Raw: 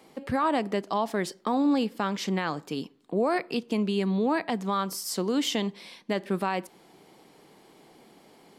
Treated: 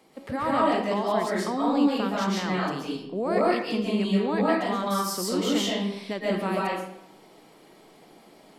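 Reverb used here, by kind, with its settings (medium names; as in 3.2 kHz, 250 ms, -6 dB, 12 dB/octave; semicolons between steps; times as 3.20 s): algorithmic reverb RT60 0.73 s, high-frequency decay 0.75×, pre-delay 95 ms, DRR -6 dB; trim -4 dB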